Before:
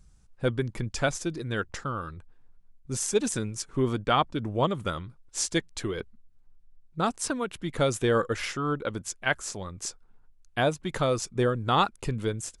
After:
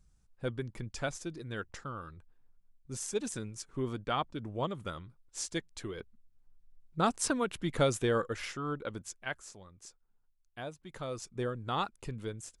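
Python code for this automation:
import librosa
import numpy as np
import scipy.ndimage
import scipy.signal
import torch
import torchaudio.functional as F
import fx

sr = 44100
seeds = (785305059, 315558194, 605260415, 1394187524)

y = fx.gain(x, sr, db=fx.line((6.0, -9.0), (7.15, -1.0), (7.69, -1.0), (8.31, -7.5), (8.99, -7.5), (9.69, -17.0), (10.83, -17.0), (11.31, -10.0)))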